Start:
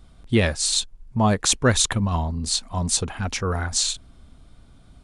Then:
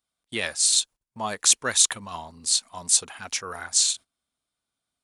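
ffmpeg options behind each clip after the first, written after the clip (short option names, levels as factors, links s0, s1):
-af "agate=range=0.1:threshold=0.0158:ratio=16:detection=peak,highpass=f=1200:p=1,highshelf=f=6900:g=11,volume=0.75"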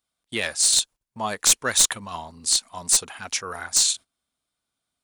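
-af "aeval=exprs='clip(val(0),-1,0.178)':c=same,volume=1.26"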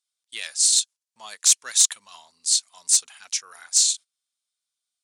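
-af "bandpass=f=6400:t=q:w=0.98:csg=0,volume=1.26"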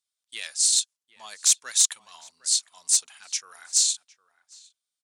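-filter_complex "[0:a]asplit=2[s0][s1];[s1]adelay=758,volume=0.141,highshelf=f=4000:g=-17.1[s2];[s0][s2]amix=inputs=2:normalize=0,volume=0.75"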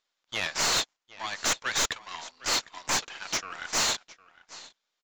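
-filter_complex "[0:a]aeval=exprs='max(val(0),0)':c=same,aresample=16000,aresample=44100,asplit=2[s0][s1];[s1]highpass=f=720:p=1,volume=20,asoftclip=type=tanh:threshold=0.376[s2];[s0][s2]amix=inputs=2:normalize=0,lowpass=f=2200:p=1,volume=0.501,volume=0.75"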